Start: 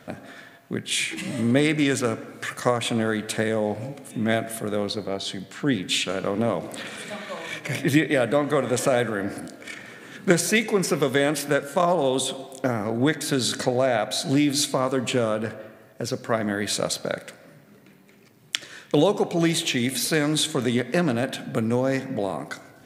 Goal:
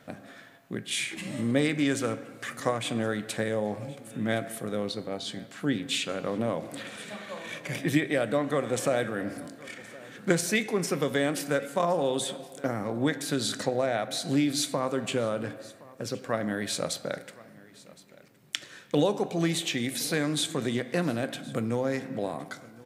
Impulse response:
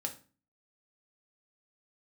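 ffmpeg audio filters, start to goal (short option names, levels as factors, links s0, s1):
-filter_complex "[0:a]aecho=1:1:1067:0.0841,asplit=2[s0][s1];[1:a]atrim=start_sample=2205[s2];[s1][s2]afir=irnorm=-1:irlink=0,volume=0.376[s3];[s0][s3]amix=inputs=2:normalize=0,volume=0.398"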